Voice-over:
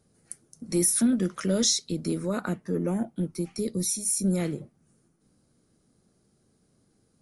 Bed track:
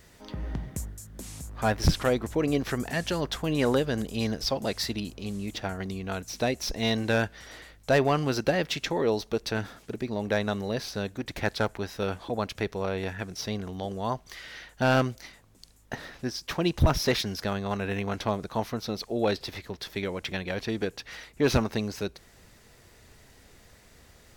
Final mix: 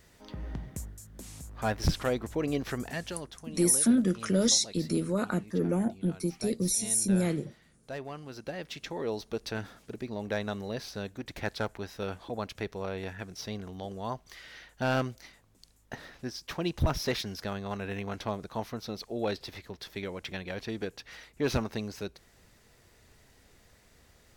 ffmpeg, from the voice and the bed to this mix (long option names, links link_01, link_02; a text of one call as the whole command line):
ffmpeg -i stem1.wav -i stem2.wav -filter_complex "[0:a]adelay=2850,volume=-0.5dB[link_01];[1:a]volume=7dB,afade=type=out:start_time=2.84:duration=0.51:silence=0.237137,afade=type=in:start_time=8.29:duration=1.13:silence=0.266073[link_02];[link_01][link_02]amix=inputs=2:normalize=0" out.wav